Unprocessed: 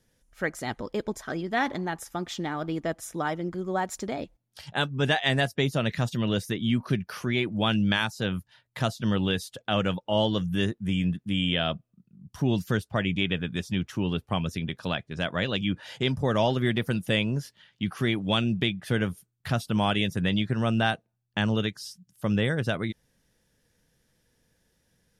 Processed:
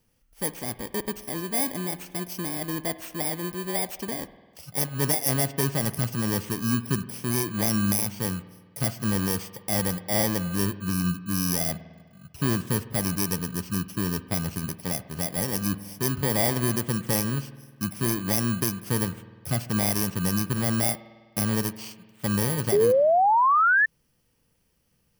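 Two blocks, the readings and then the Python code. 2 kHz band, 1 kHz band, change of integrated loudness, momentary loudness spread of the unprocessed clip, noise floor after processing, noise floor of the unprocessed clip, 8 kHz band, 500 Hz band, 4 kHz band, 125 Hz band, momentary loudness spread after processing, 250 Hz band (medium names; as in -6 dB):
+1.0 dB, +5.0 dB, +2.0 dB, 9 LU, -68 dBFS, -75 dBFS, +15.0 dB, +1.5 dB, -4.5 dB, 0.0 dB, 10 LU, -0.5 dB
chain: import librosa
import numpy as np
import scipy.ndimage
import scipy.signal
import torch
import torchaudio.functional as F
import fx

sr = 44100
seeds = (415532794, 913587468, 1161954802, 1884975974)

y = fx.bit_reversed(x, sr, seeds[0], block=32)
y = fx.rev_spring(y, sr, rt60_s=1.5, pass_ms=(50,), chirp_ms=50, drr_db=14.0)
y = fx.spec_paint(y, sr, seeds[1], shape='rise', start_s=22.72, length_s=1.14, low_hz=390.0, high_hz=1800.0, level_db=-19.0)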